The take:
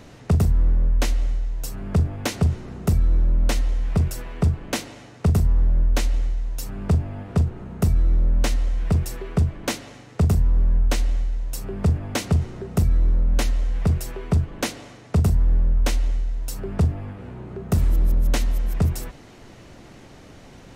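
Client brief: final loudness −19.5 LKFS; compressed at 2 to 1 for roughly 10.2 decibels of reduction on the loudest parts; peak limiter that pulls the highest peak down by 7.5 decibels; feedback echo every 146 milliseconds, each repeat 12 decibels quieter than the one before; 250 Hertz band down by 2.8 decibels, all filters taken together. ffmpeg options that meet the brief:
ffmpeg -i in.wav -af "equalizer=frequency=250:width_type=o:gain=-4.5,acompressor=threshold=-34dB:ratio=2,alimiter=level_in=0.5dB:limit=-24dB:level=0:latency=1,volume=-0.5dB,aecho=1:1:146|292|438:0.251|0.0628|0.0157,volume=15dB" out.wav

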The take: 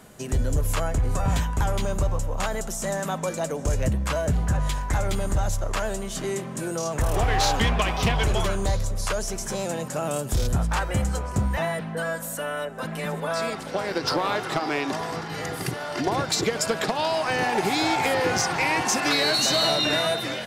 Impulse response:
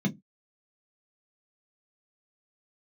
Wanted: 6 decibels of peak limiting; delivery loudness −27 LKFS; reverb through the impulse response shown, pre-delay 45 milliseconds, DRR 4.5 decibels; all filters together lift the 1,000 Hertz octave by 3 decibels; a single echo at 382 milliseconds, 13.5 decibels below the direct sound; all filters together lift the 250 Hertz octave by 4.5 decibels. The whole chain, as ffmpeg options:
-filter_complex "[0:a]equalizer=frequency=250:width_type=o:gain=6,equalizer=frequency=1000:width_type=o:gain=3.5,alimiter=limit=-17dB:level=0:latency=1,aecho=1:1:382:0.211,asplit=2[link_01][link_02];[1:a]atrim=start_sample=2205,adelay=45[link_03];[link_02][link_03]afir=irnorm=-1:irlink=0,volume=-9.5dB[link_04];[link_01][link_04]amix=inputs=2:normalize=0,volume=-10dB"

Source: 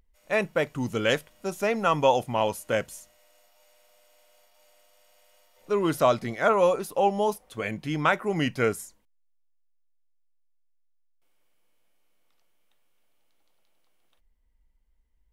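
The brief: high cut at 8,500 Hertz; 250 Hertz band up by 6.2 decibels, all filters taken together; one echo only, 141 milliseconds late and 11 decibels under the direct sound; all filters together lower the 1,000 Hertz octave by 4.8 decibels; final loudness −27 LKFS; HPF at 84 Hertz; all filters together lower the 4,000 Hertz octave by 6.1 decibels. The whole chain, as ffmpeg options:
ffmpeg -i in.wav -af "highpass=84,lowpass=8500,equalizer=frequency=250:width_type=o:gain=8.5,equalizer=frequency=1000:width_type=o:gain=-6.5,equalizer=frequency=4000:width_type=o:gain=-8.5,aecho=1:1:141:0.282,volume=-2dB" out.wav

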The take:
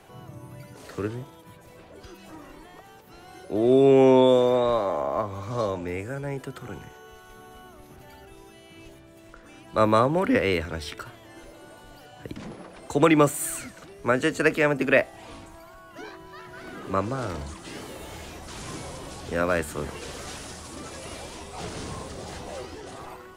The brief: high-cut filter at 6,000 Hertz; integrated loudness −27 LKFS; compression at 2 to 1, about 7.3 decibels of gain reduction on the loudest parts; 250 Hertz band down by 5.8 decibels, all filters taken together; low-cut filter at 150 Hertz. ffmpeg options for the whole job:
ffmpeg -i in.wav -af "highpass=150,lowpass=6000,equalizer=frequency=250:width_type=o:gain=-7,acompressor=threshold=-29dB:ratio=2,volume=6.5dB" out.wav

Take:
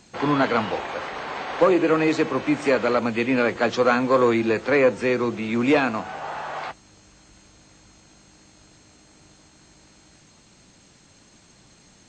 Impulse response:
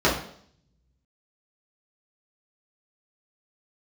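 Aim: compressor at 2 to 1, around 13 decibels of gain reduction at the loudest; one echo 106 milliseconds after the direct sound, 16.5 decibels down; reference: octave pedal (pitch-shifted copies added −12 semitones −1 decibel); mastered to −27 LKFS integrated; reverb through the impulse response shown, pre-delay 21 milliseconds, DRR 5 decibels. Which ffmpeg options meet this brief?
-filter_complex "[0:a]acompressor=threshold=-38dB:ratio=2,aecho=1:1:106:0.15,asplit=2[link_01][link_02];[1:a]atrim=start_sample=2205,adelay=21[link_03];[link_02][link_03]afir=irnorm=-1:irlink=0,volume=-23.5dB[link_04];[link_01][link_04]amix=inputs=2:normalize=0,asplit=2[link_05][link_06];[link_06]asetrate=22050,aresample=44100,atempo=2,volume=-1dB[link_07];[link_05][link_07]amix=inputs=2:normalize=0,volume=1.5dB"

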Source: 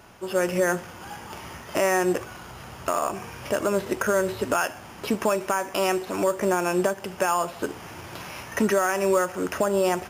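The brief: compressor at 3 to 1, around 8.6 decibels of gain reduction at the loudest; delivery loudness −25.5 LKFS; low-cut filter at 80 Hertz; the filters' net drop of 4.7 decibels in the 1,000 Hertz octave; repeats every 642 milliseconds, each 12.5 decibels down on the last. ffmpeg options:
ffmpeg -i in.wav -af "highpass=80,equalizer=frequency=1000:width_type=o:gain=-6.5,acompressor=threshold=-31dB:ratio=3,aecho=1:1:642|1284|1926:0.237|0.0569|0.0137,volume=9dB" out.wav

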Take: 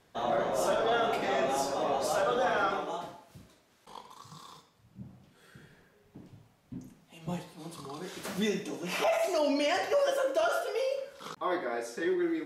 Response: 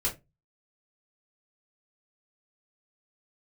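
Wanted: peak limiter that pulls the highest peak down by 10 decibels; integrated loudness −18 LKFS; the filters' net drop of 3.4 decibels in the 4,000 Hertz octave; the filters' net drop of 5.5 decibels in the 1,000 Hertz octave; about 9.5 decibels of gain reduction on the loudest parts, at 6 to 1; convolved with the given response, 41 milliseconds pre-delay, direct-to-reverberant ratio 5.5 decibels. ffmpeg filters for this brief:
-filter_complex "[0:a]equalizer=frequency=1000:width_type=o:gain=-8.5,equalizer=frequency=4000:width_type=o:gain=-4,acompressor=threshold=-37dB:ratio=6,alimiter=level_in=13.5dB:limit=-24dB:level=0:latency=1,volume=-13.5dB,asplit=2[link_01][link_02];[1:a]atrim=start_sample=2205,adelay=41[link_03];[link_02][link_03]afir=irnorm=-1:irlink=0,volume=-11.5dB[link_04];[link_01][link_04]amix=inputs=2:normalize=0,volume=27dB"

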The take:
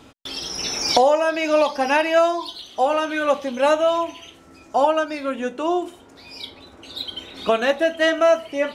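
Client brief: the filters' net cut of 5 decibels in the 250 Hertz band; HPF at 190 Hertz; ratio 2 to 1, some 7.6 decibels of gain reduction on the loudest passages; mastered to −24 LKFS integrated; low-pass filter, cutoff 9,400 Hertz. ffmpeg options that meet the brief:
ffmpeg -i in.wav -af "highpass=190,lowpass=9400,equalizer=frequency=250:width_type=o:gain=-6,acompressor=threshold=-26dB:ratio=2,volume=3dB" out.wav

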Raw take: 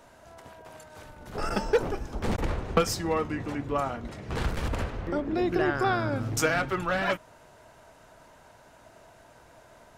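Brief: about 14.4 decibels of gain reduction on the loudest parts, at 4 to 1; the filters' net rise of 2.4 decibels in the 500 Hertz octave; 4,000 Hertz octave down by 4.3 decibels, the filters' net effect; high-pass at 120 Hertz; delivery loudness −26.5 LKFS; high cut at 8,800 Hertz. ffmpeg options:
ffmpeg -i in.wav -af "highpass=120,lowpass=8800,equalizer=frequency=500:width_type=o:gain=3,equalizer=frequency=4000:width_type=o:gain=-6,acompressor=threshold=-33dB:ratio=4,volume=10.5dB" out.wav

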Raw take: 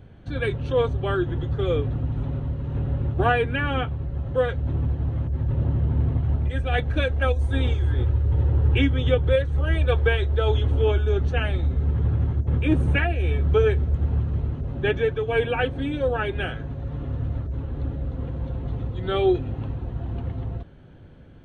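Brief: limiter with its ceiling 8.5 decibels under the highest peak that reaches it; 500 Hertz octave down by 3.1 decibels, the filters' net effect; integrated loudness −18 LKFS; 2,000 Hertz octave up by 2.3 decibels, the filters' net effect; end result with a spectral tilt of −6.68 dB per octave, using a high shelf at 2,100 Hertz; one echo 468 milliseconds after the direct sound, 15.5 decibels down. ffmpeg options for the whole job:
ffmpeg -i in.wav -af "equalizer=frequency=500:width_type=o:gain=-3.5,equalizer=frequency=2000:width_type=o:gain=8,highshelf=frequency=2100:gain=-8.5,alimiter=limit=-16.5dB:level=0:latency=1,aecho=1:1:468:0.168,volume=8dB" out.wav

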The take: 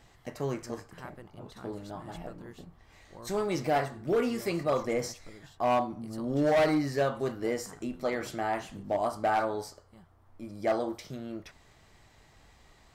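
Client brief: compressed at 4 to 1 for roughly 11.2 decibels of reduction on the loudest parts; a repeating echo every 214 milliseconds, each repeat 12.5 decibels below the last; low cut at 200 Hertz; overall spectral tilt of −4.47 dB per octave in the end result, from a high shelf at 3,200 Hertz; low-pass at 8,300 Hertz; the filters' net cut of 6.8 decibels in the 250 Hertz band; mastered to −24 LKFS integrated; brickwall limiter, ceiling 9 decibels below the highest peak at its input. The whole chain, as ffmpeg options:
ffmpeg -i in.wav -af "highpass=200,lowpass=8300,equalizer=frequency=250:width_type=o:gain=-7.5,highshelf=frequency=3200:gain=-4,acompressor=threshold=-37dB:ratio=4,alimiter=level_in=10dB:limit=-24dB:level=0:latency=1,volume=-10dB,aecho=1:1:214|428|642:0.237|0.0569|0.0137,volume=21dB" out.wav

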